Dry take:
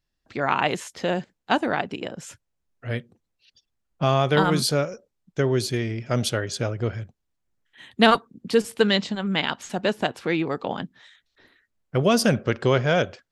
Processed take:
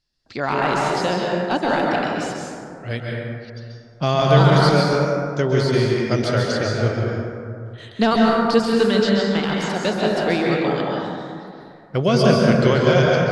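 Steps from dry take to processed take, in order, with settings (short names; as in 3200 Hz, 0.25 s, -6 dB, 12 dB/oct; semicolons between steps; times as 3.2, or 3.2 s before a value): de-esser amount 85%; LPF 11000 Hz 24 dB/oct; bell 4700 Hz +11.5 dB 0.61 oct; plate-style reverb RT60 2.4 s, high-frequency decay 0.35×, pre-delay 0.12 s, DRR -3 dB; gain +1 dB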